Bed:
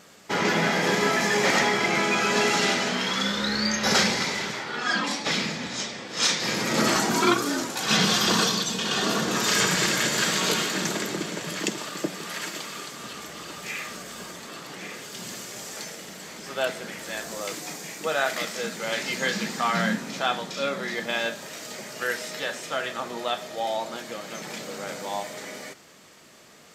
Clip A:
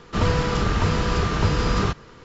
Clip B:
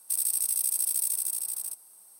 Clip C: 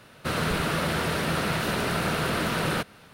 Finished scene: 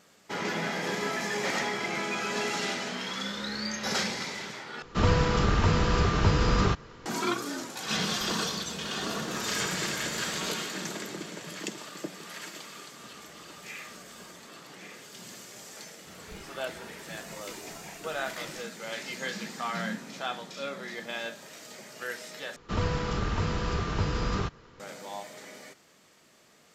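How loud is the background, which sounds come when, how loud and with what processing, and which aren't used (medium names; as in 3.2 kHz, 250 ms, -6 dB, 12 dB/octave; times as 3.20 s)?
bed -8.5 dB
4.82 s: replace with A -2.5 dB
7.70 s: add C -9.5 dB + compression, threshold -31 dBFS
15.81 s: add C -13.5 dB + spectral noise reduction 12 dB
22.56 s: replace with A -8 dB
not used: B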